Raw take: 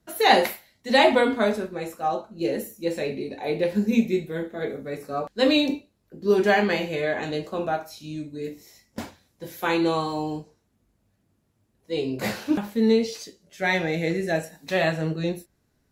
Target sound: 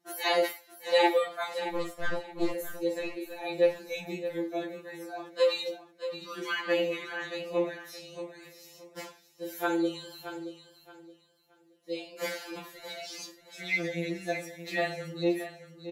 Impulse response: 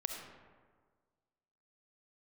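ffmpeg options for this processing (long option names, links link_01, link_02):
-filter_complex "[0:a]highpass=330,asplit=2[link_01][link_02];[link_02]acompressor=threshold=-33dB:ratio=6,volume=0dB[link_03];[link_01][link_03]amix=inputs=2:normalize=0,flanger=delay=8.2:depth=8.8:regen=53:speed=0.2:shape=sinusoidal,asplit=3[link_04][link_05][link_06];[link_04]afade=type=out:start_time=1.66:duration=0.02[link_07];[link_05]aeval=exprs='0.141*(cos(1*acos(clip(val(0)/0.141,-1,1)))-cos(1*PI/2))+0.0355*(cos(4*acos(clip(val(0)/0.141,-1,1)))-cos(4*PI/2))+0.00562*(cos(6*acos(clip(val(0)/0.141,-1,1)))-cos(6*PI/2))+0.00708*(cos(7*acos(clip(val(0)/0.141,-1,1)))-cos(7*PI/2))+0.00398*(cos(8*acos(clip(val(0)/0.141,-1,1)))-cos(8*PI/2))':channel_layout=same,afade=type=in:start_time=1.66:duration=0.02,afade=type=out:start_time=2.51:duration=0.02[link_08];[link_06]afade=type=in:start_time=2.51:duration=0.02[link_09];[link_07][link_08][link_09]amix=inputs=3:normalize=0,asplit=2[link_10][link_11];[link_11]aecho=0:1:623|1246|1869:0.266|0.0665|0.0166[link_12];[link_10][link_12]amix=inputs=2:normalize=0,afftfilt=real='re*2.83*eq(mod(b,8),0)':imag='im*2.83*eq(mod(b,8),0)':win_size=2048:overlap=0.75,volume=-1.5dB"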